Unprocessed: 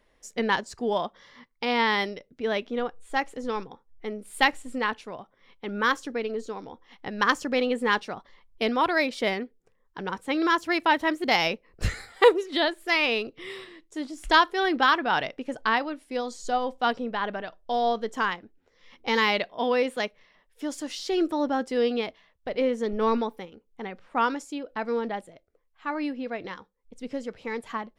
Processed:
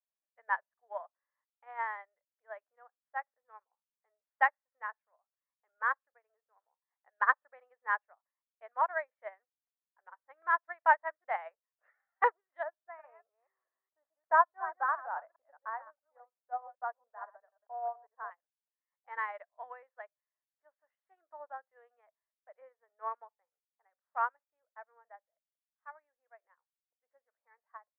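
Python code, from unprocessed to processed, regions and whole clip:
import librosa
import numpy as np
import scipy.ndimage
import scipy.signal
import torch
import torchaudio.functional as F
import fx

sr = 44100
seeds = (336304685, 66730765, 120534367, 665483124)

y = fx.chain(x, sr, fx.reverse_delay(ms=210, wet_db=-7.0),
    fx.lowpass(hz=1200.0, slope=12), at=(12.63, 18.31))
y = scipy.signal.sosfilt(scipy.signal.ellip(3, 1.0, 60, [610.0, 1800.0], 'bandpass', fs=sr, output='sos'), y)
y = fx.upward_expand(y, sr, threshold_db=-42.0, expansion=2.5)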